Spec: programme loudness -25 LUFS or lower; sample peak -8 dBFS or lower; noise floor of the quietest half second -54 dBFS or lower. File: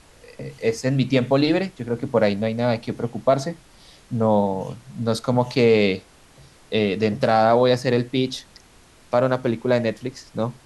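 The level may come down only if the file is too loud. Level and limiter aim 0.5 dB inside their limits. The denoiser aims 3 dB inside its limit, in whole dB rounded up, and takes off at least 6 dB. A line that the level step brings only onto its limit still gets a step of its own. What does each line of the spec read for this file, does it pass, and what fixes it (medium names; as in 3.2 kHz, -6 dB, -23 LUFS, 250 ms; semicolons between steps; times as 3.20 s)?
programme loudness -21.5 LUFS: fail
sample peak -6.0 dBFS: fail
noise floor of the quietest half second -51 dBFS: fail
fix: trim -4 dB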